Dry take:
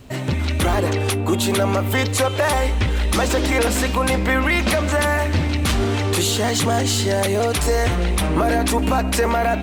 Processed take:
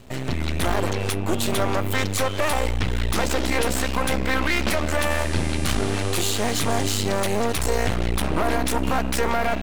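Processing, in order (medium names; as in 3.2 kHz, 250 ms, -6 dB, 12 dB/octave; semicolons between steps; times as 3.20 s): half-wave rectifier; 5.09–6.94 s: mains buzz 400 Hz, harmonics 28, -39 dBFS -1 dB/octave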